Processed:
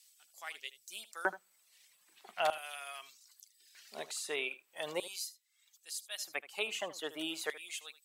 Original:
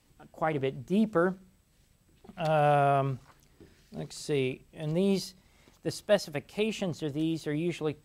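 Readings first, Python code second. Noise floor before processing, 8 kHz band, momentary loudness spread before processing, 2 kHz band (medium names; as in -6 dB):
-66 dBFS, +3.0 dB, 14 LU, -1.0 dB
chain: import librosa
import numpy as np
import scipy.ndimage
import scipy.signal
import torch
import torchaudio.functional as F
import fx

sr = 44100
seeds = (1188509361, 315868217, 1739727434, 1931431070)

p1 = fx.dereverb_blind(x, sr, rt60_s=0.97)
p2 = fx.filter_lfo_highpass(p1, sr, shape='square', hz=0.4, low_hz=910.0, high_hz=4500.0, q=0.75)
p3 = fx.low_shelf(p2, sr, hz=130.0, db=-9.5)
p4 = fx.rider(p3, sr, range_db=4, speed_s=0.5)
p5 = p4 + fx.echo_single(p4, sr, ms=77, db=-16.5, dry=0)
p6 = fx.dynamic_eq(p5, sr, hz=5000.0, q=1.9, threshold_db=-60.0, ratio=4.0, max_db=-7)
y = p6 * 10.0 ** (6.0 / 20.0)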